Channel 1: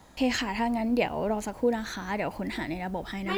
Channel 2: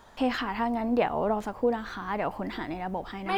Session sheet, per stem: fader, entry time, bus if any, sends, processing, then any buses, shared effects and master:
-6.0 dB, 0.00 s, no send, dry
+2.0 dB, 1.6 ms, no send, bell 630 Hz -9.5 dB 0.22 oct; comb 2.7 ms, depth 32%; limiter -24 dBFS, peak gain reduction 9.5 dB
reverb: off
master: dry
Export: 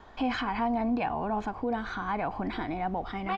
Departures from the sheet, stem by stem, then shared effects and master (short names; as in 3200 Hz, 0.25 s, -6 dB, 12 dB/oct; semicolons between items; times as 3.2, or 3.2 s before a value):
stem 2: missing bell 630 Hz -9.5 dB 0.22 oct; master: extra air absorption 180 m